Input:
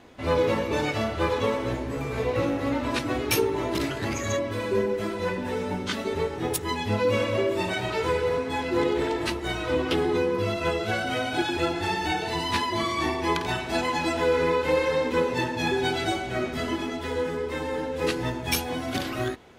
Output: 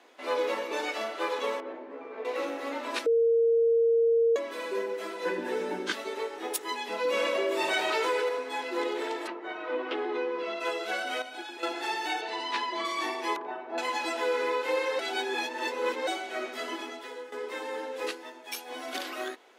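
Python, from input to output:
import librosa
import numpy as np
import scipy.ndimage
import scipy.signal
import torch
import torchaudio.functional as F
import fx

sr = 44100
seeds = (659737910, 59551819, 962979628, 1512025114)

y = fx.spacing_loss(x, sr, db_at_10k=45, at=(1.6, 2.25))
y = fx.small_body(y, sr, hz=(200.0, 330.0, 1600.0), ring_ms=60, db=16, at=(5.25, 5.92))
y = fx.env_flatten(y, sr, amount_pct=70, at=(7.04, 8.29))
y = fx.lowpass(y, sr, hz=fx.line((9.26, 1500.0), (10.59, 4000.0)), slope=12, at=(9.26, 10.59), fade=0.02)
y = fx.air_absorb(y, sr, metres=92.0, at=(12.21, 12.85))
y = fx.lowpass(y, sr, hz=1000.0, slope=12, at=(13.36, 13.78))
y = fx.edit(y, sr, fx.bleep(start_s=3.06, length_s=1.3, hz=461.0, db=-13.5),
    fx.clip_gain(start_s=11.22, length_s=0.41, db=-8.5),
    fx.reverse_span(start_s=14.99, length_s=1.08),
    fx.fade_out_to(start_s=16.79, length_s=0.53, floor_db=-12.5),
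    fx.fade_down_up(start_s=18.01, length_s=0.8, db=-8.0, fade_s=0.18), tone=tone)
y = scipy.signal.sosfilt(scipy.signal.bessel(8, 480.0, 'highpass', norm='mag', fs=sr, output='sos'), y)
y = y * 10.0 ** (-3.0 / 20.0)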